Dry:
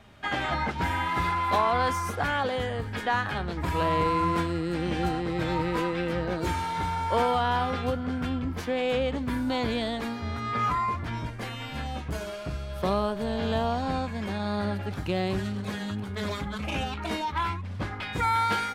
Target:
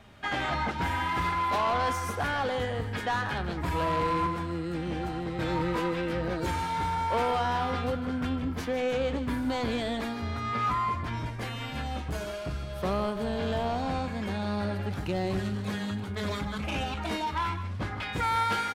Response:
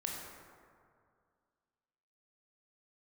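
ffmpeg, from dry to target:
-filter_complex "[0:a]asoftclip=type=tanh:threshold=-22dB,asettb=1/sr,asplit=3[a][b][c];[a]atrim=end=4.264[d];[b]atrim=start=4.26:end=5.39,asetpts=PTS-STARTPTS,afade=t=in:d=0.004:c=qsin,afade=t=out:st=1.126:d=0.004:c=qsin,acrossover=split=190|1600[e][f][g];[e]acompressor=threshold=-36dB:ratio=4[h];[f]acompressor=threshold=-33dB:ratio=4[i];[g]acompressor=threshold=-47dB:ratio=4[j];[h][i][j]amix=inputs=3:normalize=0[k];[c]atrim=start=5.386[l];[d][k]acrossfade=d=0.004:c1=hsin:c2=qsin[m];[m][l]acrossfade=d=0.004:c1=qsin:c2=hsin,aecho=1:1:154:0.251"

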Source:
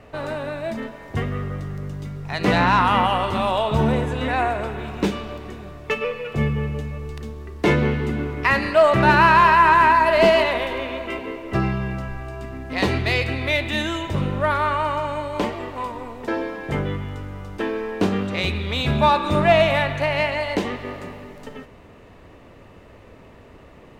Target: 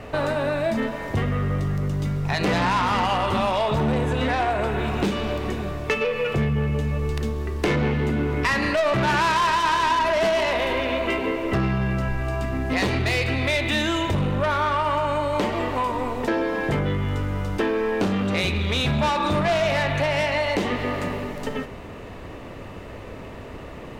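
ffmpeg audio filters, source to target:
-af "asoftclip=type=tanh:threshold=-18.5dB,acompressor=threshold=-29dB:ratio=6,bandreject=f=78.19:t=h:w=4,bandreject=f=156.38:t=h:w=4,bandreject=f=234.57:t=h:w=4,bandreject=f=312.76:t=h:w=4,bandreject=f=390.95:t=h:w=4,bandreject=f=469.14:t=h:w=4,bandreject=f=547.33:t=h:w=4,bandreject=f=625.52:t=h:w=4,bandreject=f=703.71:t=h:w=4,bandreject=f=781.9:t=h:w=4,bandreject=f=860.09:t=h:w=4,bandreject=f=938.28:t=h:w=4,bandreject=f=1.01647k:t=h:w=4,bandreject=f=1.09466k:t=h:w=4,bandreject=f=1.17285k:t=h:w=4,bandreject=f=1.25104k:t=h:w=4,bandreject=f=1.32923k:t=h:w=4,bandreject=f=1.40742k:t=h:w=4,bandreject=f=1.48561k:t=h:w=4,bandreject=f=1.5638k:t=h:w=4,bandreject=f=1.64199k:t=h:w=4,bandreject=f=1.72018k:t=h:w=4,bandreject=f=1.79837k:t=h:w=4,bandreject=f=1.87656k:t=h:w=4,bandreject=f=1.95475k:t=h:w=4,bandreject=f=2.03294k:t=h:w=4,bandreject=f=2.11113k:t=h:w=4,bandreject=f=2.18932k:t=h:w=4,bandreject=f=2.26751k:t=h:w=4,bandreject=f=2.3457k:t=h:w=4,bandreject=f=2.42389k:t=h:w=4,volume=9dB"

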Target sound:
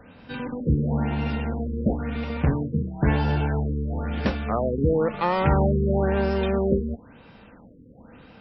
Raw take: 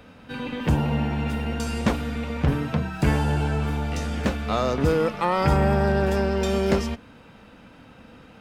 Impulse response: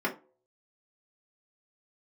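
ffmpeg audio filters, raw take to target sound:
-af "bandreject=f=1.3k:w=21,afftfilt=real='re*lt(b*sr/1024,500*pow(5800/500,0.5+0.5*sin(2*PI*0.99*pts/sr)))':imag='im*lt(b*sr/1024,500*pow(5800/500,0.5+0.5*sin(2*PI*0.99*pts/sr)))':win_size=1024:overlap=0.75"

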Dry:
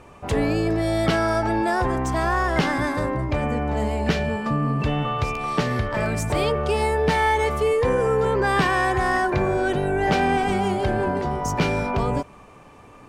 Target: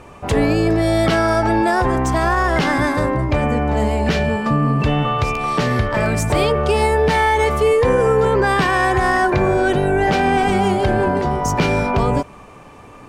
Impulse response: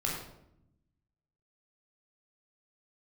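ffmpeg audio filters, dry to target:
-af "alimiter=level_in=11.5dB:limit=-1dB:release=50:level=0:latency=1,volume=-5.5dB"

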